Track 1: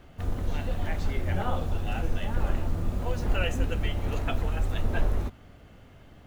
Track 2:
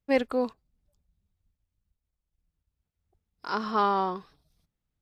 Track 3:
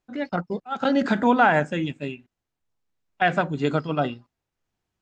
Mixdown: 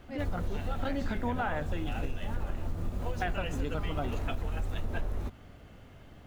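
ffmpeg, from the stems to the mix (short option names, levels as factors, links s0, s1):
-filter_complex "[0:a]volume=0.944[s0];[1:a]volume=0.106[s1];[2:a]volume=0.447[s2];[s0][s1][s2]amix=inputs=3:normalize=0,acompressor=threshold=0.0398:ratio=6"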